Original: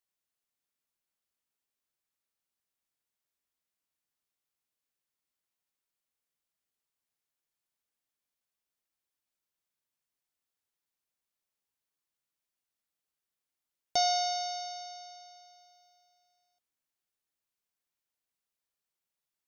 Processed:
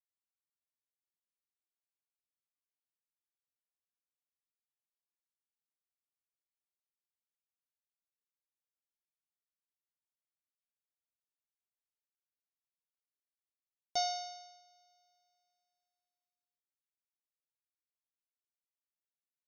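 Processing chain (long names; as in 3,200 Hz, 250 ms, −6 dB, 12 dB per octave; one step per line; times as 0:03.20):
expander for the loud parts 2.5 to 1, over −39 dBFS
level −4.5 dB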